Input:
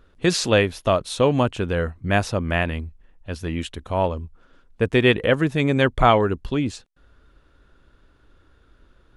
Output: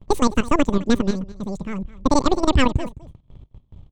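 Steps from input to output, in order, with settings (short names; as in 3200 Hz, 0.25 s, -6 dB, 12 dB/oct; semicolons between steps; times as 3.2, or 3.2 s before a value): half-wave gain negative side -3 dB; low-pass opened by the level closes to 2200 Hz, open at -19.5 dBFS; RIAA curve playback; notch 6100 Hz, Q 8.2; gate with hold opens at -30 dBFS; thirty-one-band EQ 315 Hz -5 dB, 630 Hz -10 dB, 3150 Hz +4 dB, 5000 Hz -7 dB; level quantiser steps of 13 dB; echo 0.494 s -18.5 dB; speed mistake 33 rpm record played at 78 rpm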